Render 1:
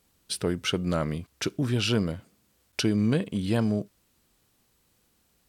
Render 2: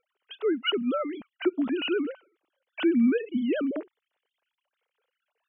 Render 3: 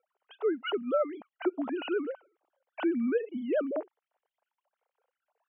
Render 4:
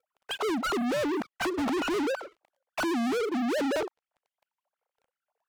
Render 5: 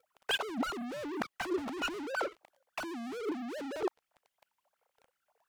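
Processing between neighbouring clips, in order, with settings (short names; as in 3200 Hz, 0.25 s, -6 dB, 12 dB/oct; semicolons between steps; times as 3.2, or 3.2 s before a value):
sine-wave speech
band-pass 750 Hz, Q 2; gain +6.5 dB
hard clip -33.5 dBFS, distortion -6 dB; treble ducked by the level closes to 1100 Hz, closed at -35 dBFS; sample leveller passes 5; gain +6 dB
negative-ratio compressor -34 dBFS, ratio -0.5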